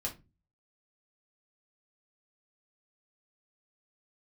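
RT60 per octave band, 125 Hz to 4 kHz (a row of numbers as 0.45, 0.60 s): 0.55, 0.45, 0.30, 0.25, 0.20, 0.20 s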